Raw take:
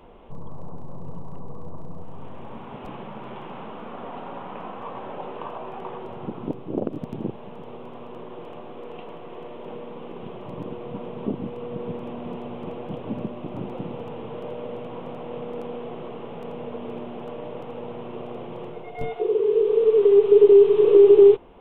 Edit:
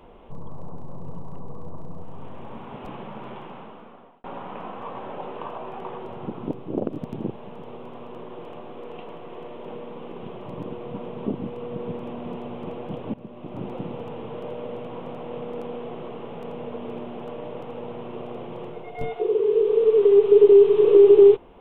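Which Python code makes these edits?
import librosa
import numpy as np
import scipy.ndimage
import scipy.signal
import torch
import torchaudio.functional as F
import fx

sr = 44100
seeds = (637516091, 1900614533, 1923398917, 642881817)

y = fx.edit(x, sr, fx.fade_out_span(start_s=3.26, length_s=0.98),
    fx.fade_in_from(start_s=13.14, length_s=0.53, floor_db=-16.5), tone=tone)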